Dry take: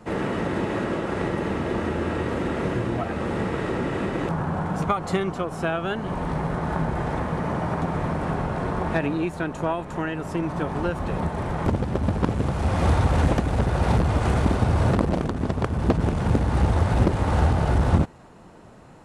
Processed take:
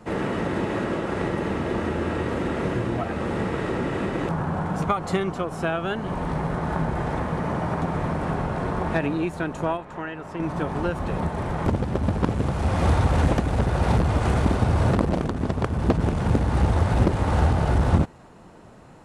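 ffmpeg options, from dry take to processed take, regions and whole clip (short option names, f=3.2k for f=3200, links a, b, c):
-filter_complex "[0:a]asettb=1/sr,asplit=3[a][b][c];[a]atrim=end=9.774[d];[b]atrim=start=9.77:end=10.4,asetpts=PTS-STARTPTS,afade=t=in:d=0.004:c=qsin,afade=t=out:st=0.626:d=0.004:c=qsin,lowpass=f=2.3k:p=1,lowshelf=f=490:g=-9[e];[c]atrim=start=10.396[f];[d][e]acrossfade=d=0.004:c1=hsin:c2=qsin[g];[g][f]acrossfade=d=0.004:c1=qsin:c2=hsin"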